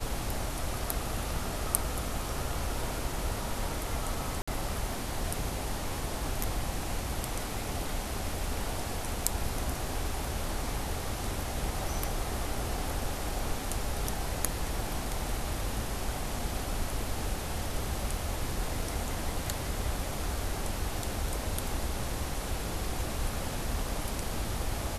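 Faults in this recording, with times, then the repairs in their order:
0:04.42–0:04.47: drop-out 55 ms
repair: repair the gap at 0:04.42, 55 ms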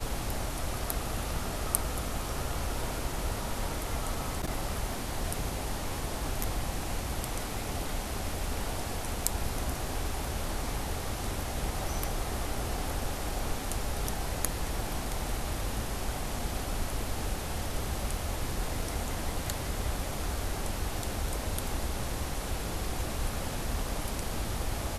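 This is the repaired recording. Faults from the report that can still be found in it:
none of them is left

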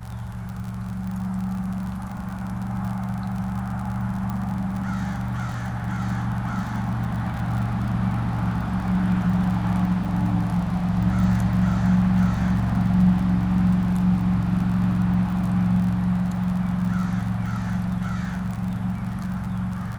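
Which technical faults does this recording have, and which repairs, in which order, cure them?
surface crackle 42 per second −30 dBFS
0:04.30: click −18 dBFS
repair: click removal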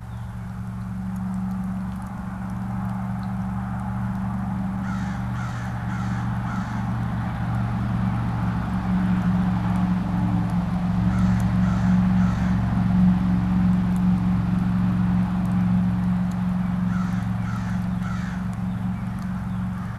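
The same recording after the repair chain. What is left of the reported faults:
none of them is left

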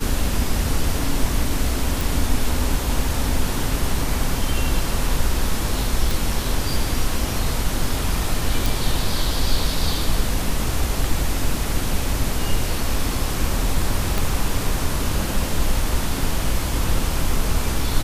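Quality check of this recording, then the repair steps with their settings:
0:02.01: click
0:06.11: click
0:08.66: click
0:14.18: click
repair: click removal

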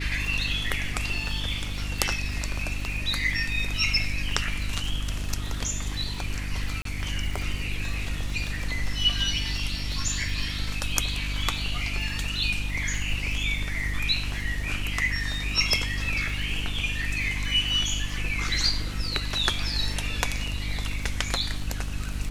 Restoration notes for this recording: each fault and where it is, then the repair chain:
surface crackle 58 per second −34 dBFS
mains hum 50 Hz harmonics 6 −32 dBFS
0:06.82–0:06.85: drop-out 33 ms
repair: click removal
hum removal 50 Hz, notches 6
repair the gap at 0:06.82, 33 ms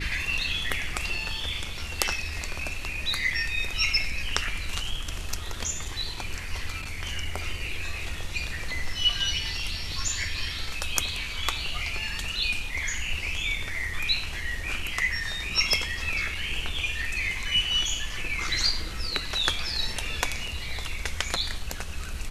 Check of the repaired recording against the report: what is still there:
none of them is left

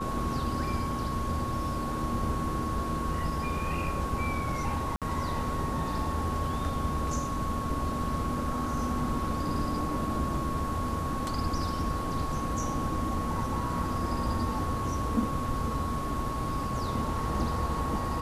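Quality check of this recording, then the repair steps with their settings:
whistle 1,100 Hz −34 dBFS
0:04.96–0:05.02: drop-out 57 ms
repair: notch filter 1,100 Hz, Q 30
repair the gap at 0:04.96, 57 ms

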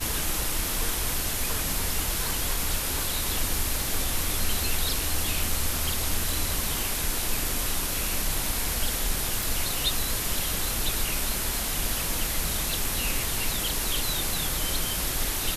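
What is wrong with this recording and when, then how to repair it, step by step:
0:09.43: click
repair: click removal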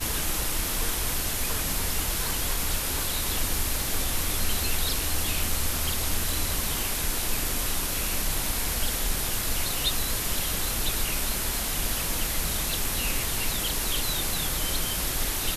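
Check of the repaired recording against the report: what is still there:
none of them is left

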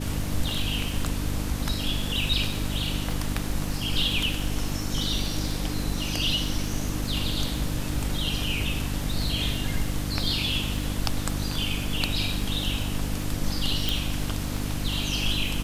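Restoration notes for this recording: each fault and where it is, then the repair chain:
surface crackle 41 per second −32 dBFS
mains hum 50 Hz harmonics 6 −31 dBFS
0:13.89: click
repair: click removal
hum removal 50 Hz, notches 6

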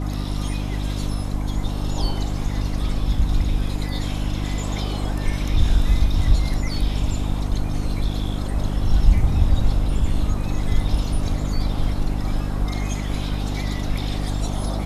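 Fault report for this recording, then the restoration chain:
mains hum 50 Hz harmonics 6 −25 dBFS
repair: hum removal 50 Hz, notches 6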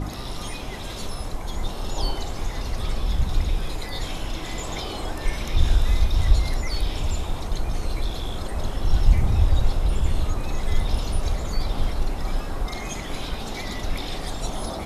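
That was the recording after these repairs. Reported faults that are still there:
none of them is left

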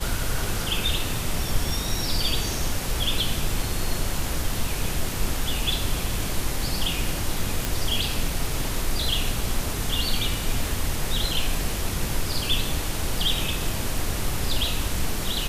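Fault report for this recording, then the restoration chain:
0:07.65: click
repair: click removal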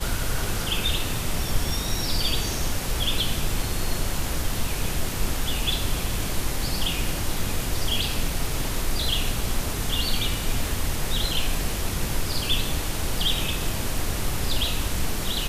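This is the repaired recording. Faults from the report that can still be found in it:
none of them is left

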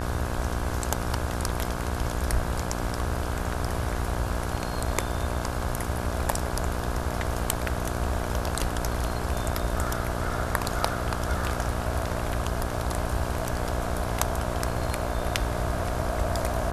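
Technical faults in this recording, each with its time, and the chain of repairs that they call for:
mains buzz 60 Hz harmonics 28 −32 dBFS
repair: hum removal 60 Hz, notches 28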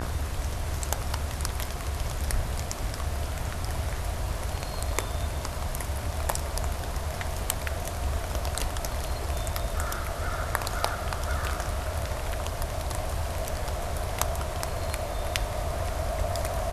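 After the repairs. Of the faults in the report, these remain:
none of them is left

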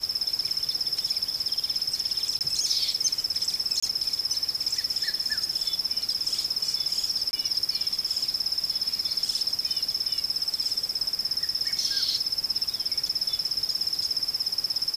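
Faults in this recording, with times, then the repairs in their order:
0:02.39–0:02.41: drop-out 18 ms
0:03.80–0:03.83: drop-out 25 ms
0:07.31–0:07.33: drop-out 20 ms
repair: repair the gap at 0:02.39, 18 ms
repair the gap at 0:03.80, 25 ms
repair the gap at 0:07.31, 20 ms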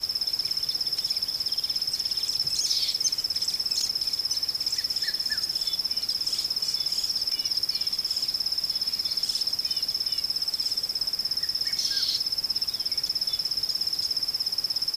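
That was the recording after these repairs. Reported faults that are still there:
none of them is left

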